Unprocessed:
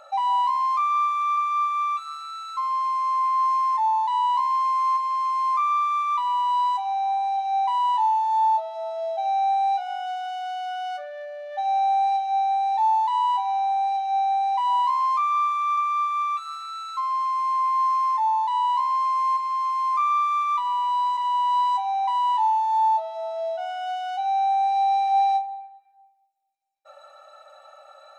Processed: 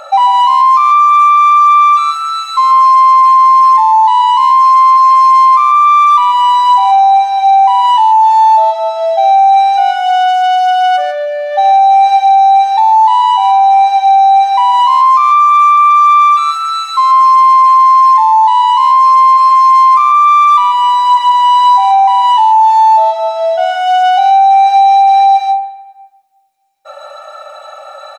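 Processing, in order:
single-tap delay 141 ms −5.5 dB
boost into a limiter +18.5 dB
level −1 dB

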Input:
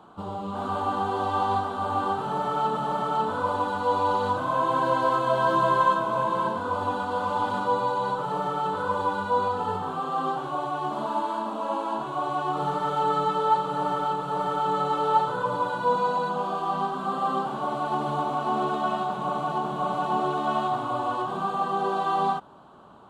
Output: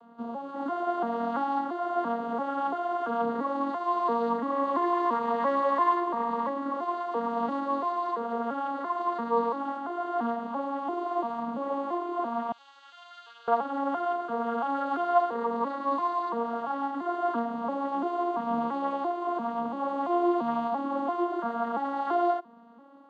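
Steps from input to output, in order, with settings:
vocoder with an arpeggio as carrier minor triad, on A#3, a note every 340 ms
0:12.52–0:13.48: flat-topped band-pass 4,600 Hz, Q 0.93
level −2 dB

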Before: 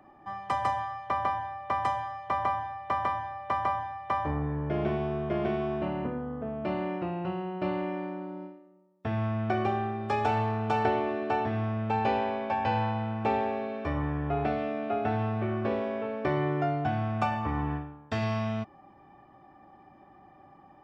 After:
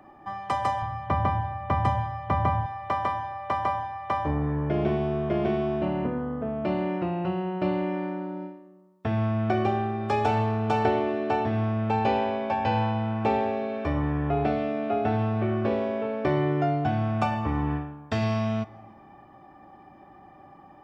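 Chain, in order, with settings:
0:00.82–0:02.66: bass and treble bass +15 dB, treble −7 dB
convolution reverb RT60 1.8 s, pre-delay 8 ms, DRR 18.5 dB
dynamic equaliser 1,500 Hz, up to −4 dB, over −39 dBFS, Q 0.78
level +4.5 dB

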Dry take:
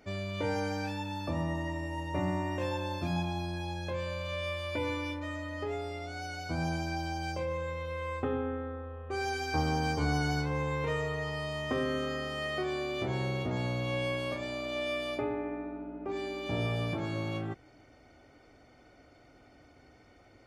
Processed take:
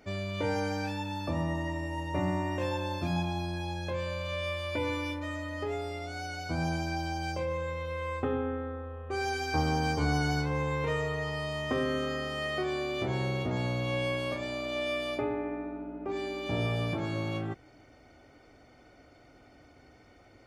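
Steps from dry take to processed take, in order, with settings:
0:04.93–0:06.22: high-shelf EQ 9,800 Hz +6 dB
level +1.5 dB

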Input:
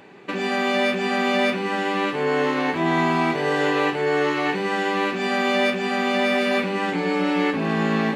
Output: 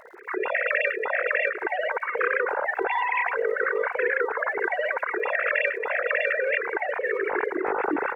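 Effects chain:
three sine waves on the formant tracks
downward compressor, threshold −23 dBFS, peak gain reduction 10 dB
formants moved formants −4 semitones
surface crackle 110 per second −52 dBFS
on a send: repeating echo 861 ms, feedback 47%, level −22 dB
on the sum: level +2 dB

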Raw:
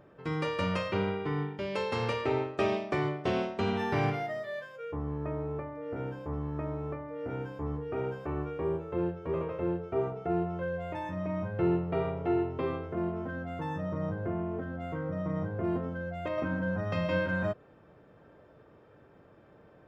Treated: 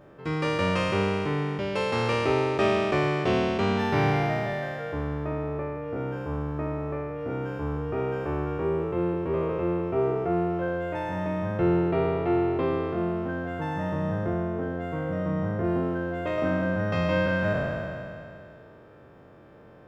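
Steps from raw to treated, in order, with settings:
peak hold with a decay on every bin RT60 2.59 s
level +3 dB

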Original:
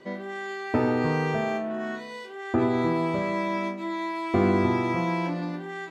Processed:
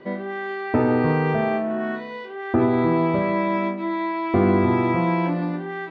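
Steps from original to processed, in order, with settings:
in parallel at +1 dB: brickwall limiter −17.5 dBFS, peak gain reduction 7.5 dB
on the sum: high-frequency loss of the air 310 metres

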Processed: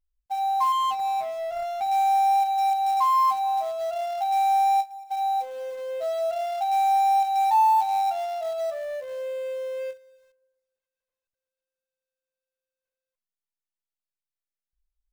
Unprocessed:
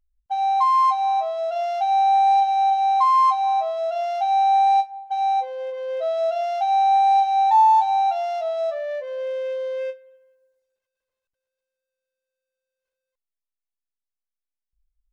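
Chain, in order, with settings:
0:00.72–0:01.89: running median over 25 samples
in parallel at −8 dB: log-companded quantiser 4 bits
on the sum: level −7 dB

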